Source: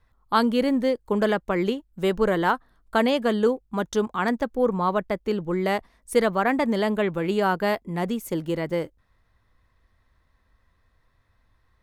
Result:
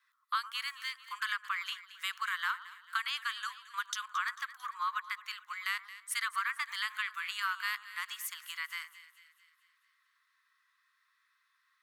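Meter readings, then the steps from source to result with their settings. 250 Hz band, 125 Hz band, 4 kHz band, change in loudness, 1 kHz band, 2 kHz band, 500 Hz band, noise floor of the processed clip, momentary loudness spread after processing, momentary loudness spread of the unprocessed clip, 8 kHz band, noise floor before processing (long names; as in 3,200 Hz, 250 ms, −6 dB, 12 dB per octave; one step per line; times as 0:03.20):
below −40 dB, below −40 dB, −2.5 dB, −12.0 dB, −10.5 dB, −3.5 dB, below −40 dB, −76 dBFS, 7 LU, 6 LU, −0.5 dB, −67 dBFS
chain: Butterworth high-pass 1,100 Hz 72 dB per octave
downward compressor 5 to 1, threshold −30 dBFS, peak gain reduction 11 dB
echo with a time of its own for lows and highs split 1,500 Hz, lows 111 ms, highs 223 ms, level −15 dB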